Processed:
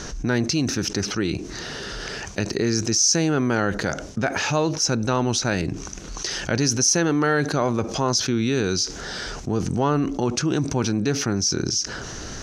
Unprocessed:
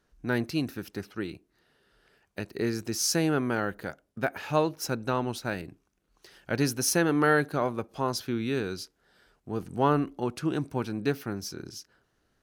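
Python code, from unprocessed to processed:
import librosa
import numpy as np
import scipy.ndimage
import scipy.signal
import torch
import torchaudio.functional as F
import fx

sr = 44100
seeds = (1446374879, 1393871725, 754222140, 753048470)

y = fx.lowpass_res(x, sr, hz=6100.0, q=5.3)
y = fx.low_shelf(y, sr, hz=250.0, db=4.0)
y = fx.env_flatten(y, sr, amount_pct=70)
y = y * 10.0 ** (-3.5 / 20.0)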